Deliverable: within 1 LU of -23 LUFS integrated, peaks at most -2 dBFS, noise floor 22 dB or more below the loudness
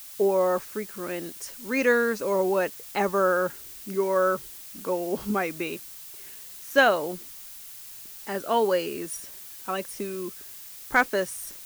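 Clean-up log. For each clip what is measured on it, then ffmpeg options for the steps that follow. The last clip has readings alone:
noise floor -43 dBFS; noise floor target -49 dBFS; loudness -26.5 LUFS; peak -8.0 dBFS; loudness target -23.0 LUFS
-> -af "afftdn=nr=6:nf=-43"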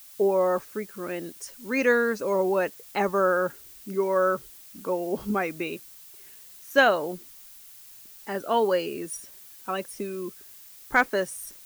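noise floor -48 dBFS; noise floor target -49 dBFS
-> -af "afftdn=nr=6:nf=-48"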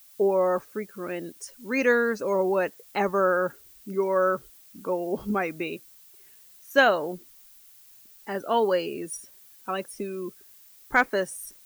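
noise floor -53 dBFS; loudness -26.5 LUFS; peak -8.0 dBFS; loudness target -23.0 LUFS
-> -af "volume=3.5dB"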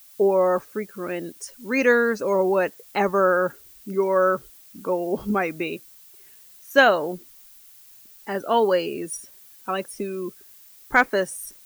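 loudness -23.0 LUFS; peak -4.5 dBFS; noise floor -50 dBFS

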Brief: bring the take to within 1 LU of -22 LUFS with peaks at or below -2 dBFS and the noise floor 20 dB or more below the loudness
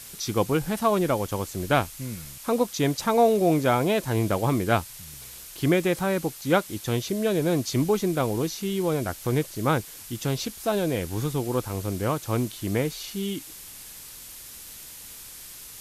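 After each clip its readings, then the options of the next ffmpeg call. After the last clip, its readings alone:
noise floor -43 dBFS; noise floor target -46 dBFS; loudness -25.5 LUFS; peak -9.0 dBFS; loudness target -22.0 LUFS
-> -af "afftdn=nr=6:nf=-43"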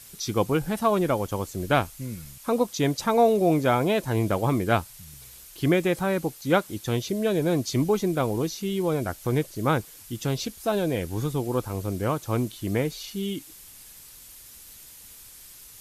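noise floor -47 dBFS; loudness -25.5 LUFS; peak -9.0 dBFS; loudness target -22.0 LUFS
-> -af "volume=3.5dB"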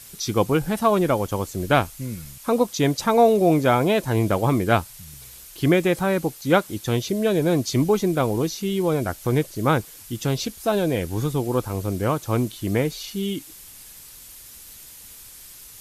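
loudness -22.0 LUFS; peak -5.5 dBFS; noise floor -44 dBFS

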